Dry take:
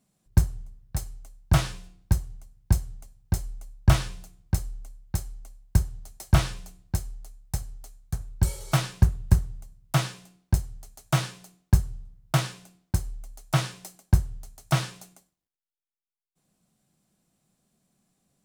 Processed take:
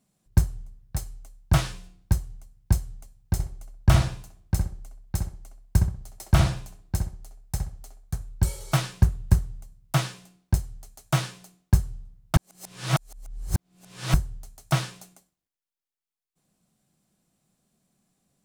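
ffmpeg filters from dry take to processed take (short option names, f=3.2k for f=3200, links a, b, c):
-filter_complex "[0:a]asettb=1/sr,asplit=3[a][b][c];[a]atrim=end=3.334[d];[b]atrim=start=3.33:end=8.19,asetpts=PTS-STARTPTS,afade=t=in:d=0.004:c=qsin,afade=t=out:st=4.856:d=0.004:c=qsin,asplit=2[e][f];[f]adelay=64,lowpass=f=1.6k:p=1,volume=-3dB,asplit=2[g][h];[h]adelay=64,lowpass=f=1.6k:p=1,volume=0.33,asplit=2[i][j];[j]adelay=64,lowpass=f=1.6k:p=1,volume=0.33,asplit=2[k][l];[l]adelay=64,lowpass=f=1.6k:p=1,volume=0.33[m];[e][g][i][k][m]amix=inputs=5:normalize=0,atrim=end_sample=214326[n];[c]atrim=start=8.186[o];[d][n]acrossfade=d=0.004:c1=hsin:c2=qsin[p];[p][o]acrossfade=d=0.004:c1=qsin:c2=hsin,asplit=3[q][r][s];[q]atrim=end=12.362[t];[r]atrim=start=12.358:end=14.142,asetpts=PTS-STARTPTS,areverse[u];[s]atrim=start=14.138[v];[t][u]acrossfade=d=0.004:c1=hsin:c2=hsin[w];[w][v]acrossfade=d=0.004:c1=hsin:c2=hsin"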